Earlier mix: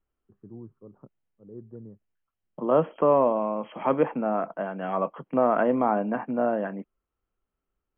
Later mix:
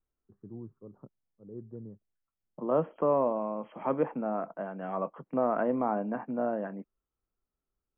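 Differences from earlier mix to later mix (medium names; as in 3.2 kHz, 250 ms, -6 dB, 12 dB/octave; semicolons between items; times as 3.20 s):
second voice -4.5 dB; master: add distance through air 450 m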